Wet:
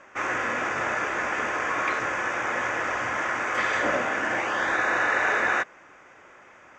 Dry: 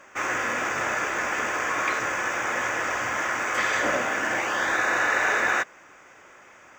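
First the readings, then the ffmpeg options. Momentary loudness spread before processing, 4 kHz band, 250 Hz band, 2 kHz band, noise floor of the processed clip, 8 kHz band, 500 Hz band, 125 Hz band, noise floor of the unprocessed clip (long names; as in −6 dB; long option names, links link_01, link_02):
5 LU, −3.0 dB, +0.5 dB, −1.0 dB, −52 dBFS, −7.0 dB, +0.5 dB, +0.5 dB, −51 dBFS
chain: -af "aemphasis=mode=reproduction:type=50fm"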